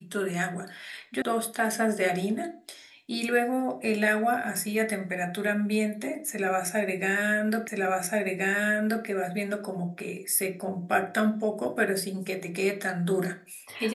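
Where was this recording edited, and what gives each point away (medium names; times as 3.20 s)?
1.22 s: sound stops dead
7.68 s: repeat of the last 1.38 s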